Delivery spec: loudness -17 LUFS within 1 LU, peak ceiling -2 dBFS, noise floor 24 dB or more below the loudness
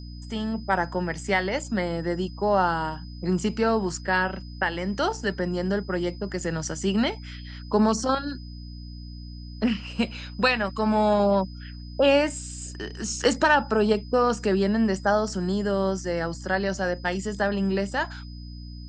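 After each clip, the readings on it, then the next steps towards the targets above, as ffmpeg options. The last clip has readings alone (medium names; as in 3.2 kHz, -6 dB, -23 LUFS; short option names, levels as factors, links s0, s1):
hum 60 Hz; highest harmonic 300 Hz; hum level -36 dBFS; steady tone 5 kHz; tone level -49 dBFS; loudness -25.5 LUFS; peak level -8.0 dBFS; loudness target -17.0 LUFS
-> -af "bandreject=f=60:t=h:w=4,bandreject=f=120:t=h:w=4,bandreject=f=180:t=h:w=4,bandreject=f=240:t=h:w=4,bandreject=f=300:t=h:w=4"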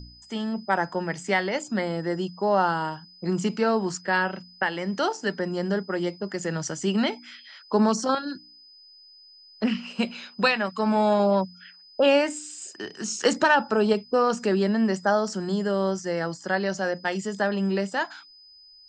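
hum not found; steady tone 5 kHz; tone level -49 dBFS
-> -af "bandreject=f=5000:w=30"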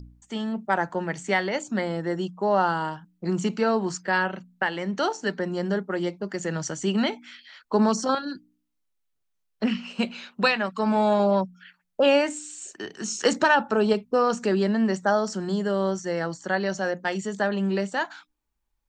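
steady tone not found; loudness -25.5 LUFS; peak level -8.5 dBFS; loudness target -17.0 LUFS
-> -af "volume=2.66,alimiter=limit=0.794:level=0:latency=1"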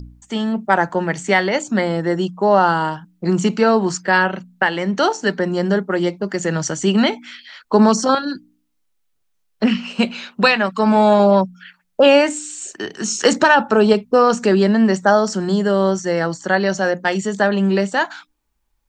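loudness -17.0 LUFS; peak level -2.0 dBFS; noise floor -67 dBFS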